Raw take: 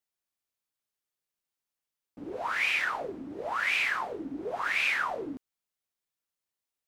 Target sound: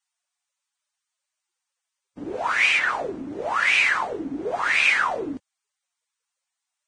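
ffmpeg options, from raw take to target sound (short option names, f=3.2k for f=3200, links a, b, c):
-filter_complex "[0:a]asettb=1/sr,asplit=3[a][b][c];[a]atrim=end=2.784[d];[b]atrim=start=2.78:end=3.27,asetpts=PTS-STARTPTS,afade=t=in:d=0.004:c=qsin,afade=t=out:st=0.486:d=0.004:c=qsin,acrossover=split=3000[e][f];[f]acompressor=threshold=-47dB:ratio=4:attack=1:release=60[g];[e][g]amix=inputs=2:normalize=0[h];[c]atrim=start=3.266[i];[d][h]acrossfade=d=0.004:c1=hsin:c2=qsin[j];[j][i]acrossfade=d=0.004:c1=qsin:c2=hsin,volume=7dB" -ar 22050 -c:a libvorbis -b:a 16k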